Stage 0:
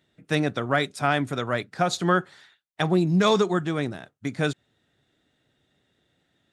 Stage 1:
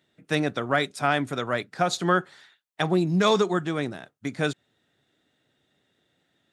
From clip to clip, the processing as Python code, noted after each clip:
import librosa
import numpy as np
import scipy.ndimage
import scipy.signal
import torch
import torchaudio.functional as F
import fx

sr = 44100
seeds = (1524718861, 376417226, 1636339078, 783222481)

y = fx.highpass(x, sr, hz=150.0, slope=6)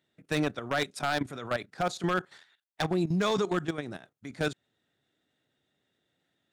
y = fx.level_steps(x, sr, step_db=13)
y = 10.0 ** (-19.0 / 20.0) * (np.abs((y / 10.0 ** (-19.0 / 20.0) + 3.0) % 4.0 - 2.0) - 1.0)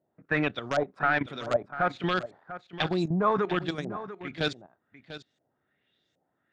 y = fx.filter_lfo_lowpass(x, sr, shape='saw_up', hz=1.3, low_hz=610.0, high_hz=6900.0, q=2.9)
y = y + 10.0 ** (-13.5 / 20.0) * np.pad(y, (int(694 * sr / 1000.0), 0))[:len(y)]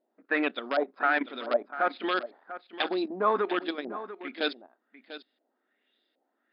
y = fx.brickwall_bandpass(x, sr, low_hz=210.0, high_hz=5200.0)